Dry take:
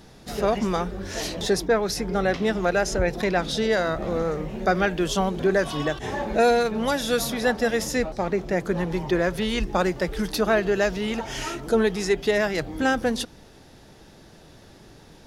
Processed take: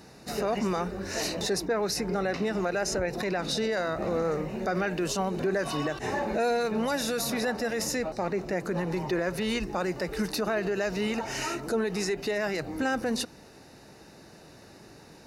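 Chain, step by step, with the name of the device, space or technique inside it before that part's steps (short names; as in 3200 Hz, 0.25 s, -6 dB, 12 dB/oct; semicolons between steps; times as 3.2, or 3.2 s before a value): PA system with an anti-feedback notch (HPF 140 Hz 6 dB/oct; Butterworth band-stop 3300 Hz, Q 5.7; limiter -20 dBFS, peak gain reduction 9.5 dB)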